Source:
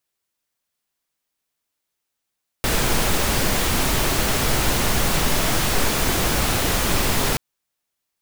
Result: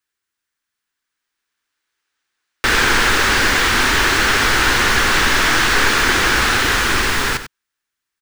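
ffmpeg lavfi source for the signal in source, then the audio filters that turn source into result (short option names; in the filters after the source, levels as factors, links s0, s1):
-f lavfi -i "anoisesrc=c=pink:a=0.543:d=4.73:r=44100:seed=1"
-filter_complex "[0:a]equalizer=f=160:t=o:w=0.67:g=-7,equalizer=f=630:t=o:w=0.67:g=-10,equalizer=f=1600:t=o:w=0.67:g=8,equalizer=f=16000:t=o:w=0.67:g=-9,acrossover=split=290|6300[s0][s1][s2];[s1]dynaudnorm=f=240:g=13:m=2.66[s3];[s0][s3][s2]amix=inputs=3:normalize=0,aecho=1:1:95:0.266"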